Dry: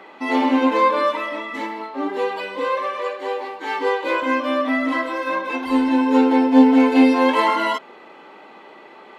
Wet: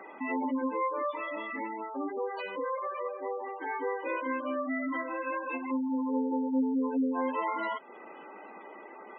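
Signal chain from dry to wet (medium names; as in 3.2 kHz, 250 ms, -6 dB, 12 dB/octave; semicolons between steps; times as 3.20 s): spectral gate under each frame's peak -15 dB strong; 6.81–7.21 s: resonant high shelf 2.2 kHz -10.5 dB, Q 3; compression 2:1, threshold -33 dBFS, peak gain reduction 13.5 dB; trim -3.5 dB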